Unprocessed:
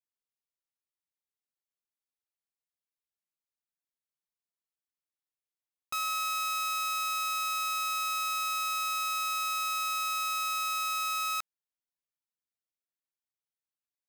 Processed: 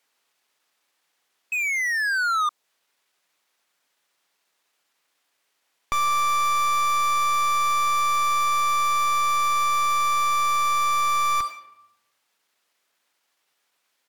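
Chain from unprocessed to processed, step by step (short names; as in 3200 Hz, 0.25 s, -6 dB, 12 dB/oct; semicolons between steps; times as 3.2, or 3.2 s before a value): HPF 150 Hz 12 dB/oct; high shelf 2700 Hz +3 dB; reverb RT60 0.80 s, pre-delay 6 ms, DRR 15 dB; painted sound fall, 1.51–2.49, 1300–2800 Hz -32 dBFS; pitch shift -1.5 st; overdrive pedal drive 27 dB, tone 2200 Hz, clips at -20.5 dBFS; dynamic EQ 1900 Hz, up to -4 dB, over -43 dBFS, Q 0.73; gain +7.5 dB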